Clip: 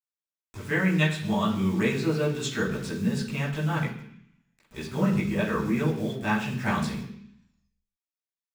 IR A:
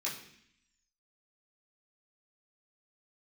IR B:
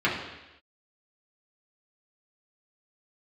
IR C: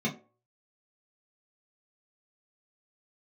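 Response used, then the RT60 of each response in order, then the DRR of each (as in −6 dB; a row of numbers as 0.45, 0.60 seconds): A; 0.65 s, non-exponential decay, 0.40 s; −7.0, −7.0, −5.5 decibels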